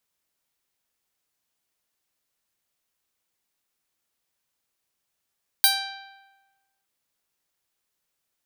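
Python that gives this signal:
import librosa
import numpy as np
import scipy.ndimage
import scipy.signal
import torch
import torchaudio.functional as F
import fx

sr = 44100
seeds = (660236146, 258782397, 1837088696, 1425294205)

y = fx.pluck(sr, length_s=1.21, note=79, decay_s=1.22, pick=0.3, brightness='bright')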